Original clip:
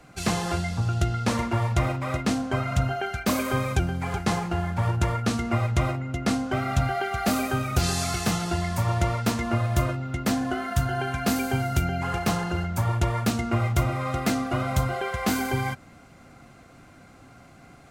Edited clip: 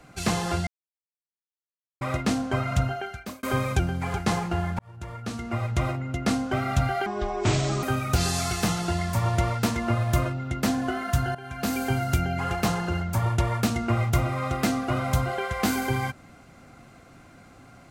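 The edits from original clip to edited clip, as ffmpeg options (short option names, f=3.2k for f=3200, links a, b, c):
-filter_complex "[0:a]asplit=8[a][b][c][d][e][f][g][h];[a]atrim=end=0.67,asetpts=PTS-STARTPTS,afade=t=out:st=0.666:d=0.004:c=hsin[i];[b]atrim=start=0.67:end=2.01,asetpts=PTS-STARTPTS,volume=0[j];[c]atrim=start=2.01:end=3.43,asetpts=PTS-STARTPTS,afade=t=in:d=0.004:c=hsin,afade=t=out:st=0.78:d=0.64[k];[d]atrim=start=3.43:end=4.79,asetpts=PTS-STARTPTS,afade=t=in:d=0.004:c=hsin,afade=t=out:st=1.356:d=0.004:c=hsin[l];[e]atrim=start=4.79:end=7.064,asetpts=PTS-STARTPTS,afade=t=in:d=1.27[m];[f]atrim=start=7.06:end=7.46,asetpts=PTS-STARTPTS,asetrate=22932,aresample=44100,atrim=end_sample=33923,asetpts=PTS-STARTPTS[n];[g]atrim=start=7.456:end=10.98,asetpts=PTS-STARTPTS,afade=t=out:st=3.52:d=0.004:c=hsin:silence=0.133352[o];[h]atrim=start=10.98,asetpts=PTS-STARTPTS,afade=t=in:d=0.51:silence=0.133352[p];[i][j][k][l][m]concat=n=5:v=0:a=1[q];[q][n]acrossfade=d=0.004:c1=hsin:c2=hsin[r];[o][p]concat=n=2:v=0:a=1[s];[r][s]acrossfade=d=0.004:c1=hsin:c2=hsin"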